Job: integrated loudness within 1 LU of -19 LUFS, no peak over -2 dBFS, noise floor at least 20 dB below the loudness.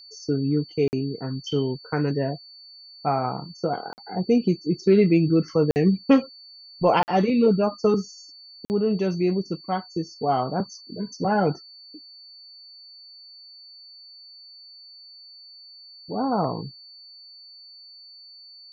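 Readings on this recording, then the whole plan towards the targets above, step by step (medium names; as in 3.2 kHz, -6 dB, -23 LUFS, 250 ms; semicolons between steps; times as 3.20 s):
dropouts 5; longest dropout 49 ms; steady tone 4.5 kHz; tone level -44 dBFS; loudness -24.0 LUFS; peak level -5.5 dBFS; loudness target -19.0 LUFS
-> interpolate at 0.88/3.93/5.71/7.03/8.65 s, 49 ms; band-stop 4.5 kHz, Q 30; trim +5 dB; peak limiter -2 dBFS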